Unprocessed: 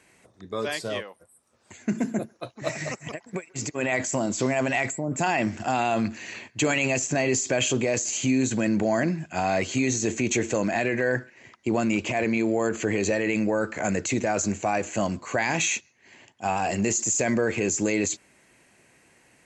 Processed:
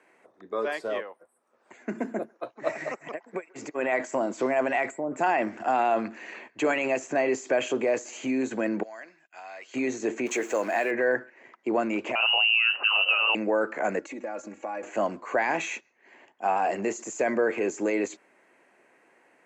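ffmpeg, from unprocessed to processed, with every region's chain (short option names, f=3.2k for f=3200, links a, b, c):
-filter_complex "[0:a]asettb=1/sr,asplit=3[a][b][c];[a]atrim=end=8.834[d];[b]atrim=start=8.83:end=9.74,asetpts=PTS-STARTPTS,afade=t=in:d=0.004:c=qsin,afade=t=out:st=0.906:d=0.004:c=qsin,lowpass=5.6k,agate=range=-17dB:threshold=-43dB:ratio=16:release=100:detection=peak,aderivative[e];[c]atrim=start=9.736[f];[d][e]acrossfade=d=0.004:c1=hsin:c2=qsin[g];[g][f]acrossfade=d=0.004:c1=qsin:c2=hsin,asettb=1/sr,asplit=3[h][i][j];[h]atrim=end=10.264[k];[i]atrim=start=10.26:end=10.91,asetpts=PTS-STARTPTS,afade=t=in:d=0.004:c=qsin,afade=t=out:st=0.646:d=0.004:c=qsin,aemphasis=mode=production:type=bsi,acrusher=bits=5:mix=0:aa=0.5[l];[j]atrim=start=10.906[m];[k][l]acrossfade=d=0.004:c1=hsin:c2=qsin[n];[n][m]acrossfade=d=0.004:c1=qsin:c2=hsin,asettb=1/sr,asplit=3[o][p][q];[o]atrim=end=12.154[r];[p]atrim=start=12.15:end=13.35,asetpts=PTS-STARTPTS,afade=t=in:d=0.004:c=qsin,afade=t=out:st=1.196:d=0.004:c=qsin,highpass=48,lowshelf=f=610:t=q:w=1.5:g=7.5,lowpass=f=2.6k:t=q:w=0.5098,lowpass=f=2.6k:t=q:w=0.6013,lowpass=f=2.6k:t=q:w=0.9,lowpass=f=2.6k:t=q:w=2.563,afreqshift=-3100[s];[q]atrim=start=13.346[t];[r][s]acrossfade=d=0.004:c1=hsin:c2=qsin[u];[u][t]acrossfade=d=0.004:c1=qsin:c2=hsin,asettb=1/sr,asplit=3[v][w][x];[v]atrim=end=13.994[y];[w]atrim=start=13.99:end=14.83,asetpts=PTS-STARTPTS,afade=t=in:d=0.004:c=qsin,afade=t=out:st=0.836:d=0.004:c=qsin,agate=range=-7dB:threshold=-30dB:ratio=16:release=100:detection=peak,aecho=1:1:3.6:0.84,atrim=end_sample=37044,acompressor=threshold=-30dB:ratio=10:attack=3.2:release=140:knee=1:detection=peak[z];[x]atrim=start=14.826[aa];[y][z]acrossfade=d=0.004:c1=hsin:c2=qsin[ab];[ab][aa]acrossfade=d=0.004:c1=qsin:c2=hsin,highpass=120,acrossover=split=280 2100:gain=0.0794 1 0.141[ac][ad][ae];[ac][ad][ae]amix=inputs=3:normalize=0,volume=2dB"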